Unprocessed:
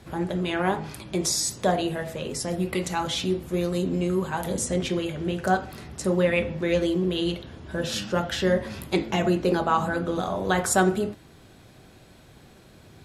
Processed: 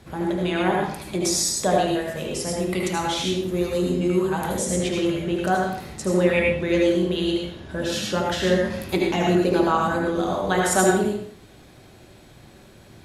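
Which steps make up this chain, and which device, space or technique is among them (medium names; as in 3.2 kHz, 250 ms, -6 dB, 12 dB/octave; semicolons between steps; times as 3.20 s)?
bathroom (reverberation RT60 0.50 s, pre-delay 71 ms, DRR 0 dB)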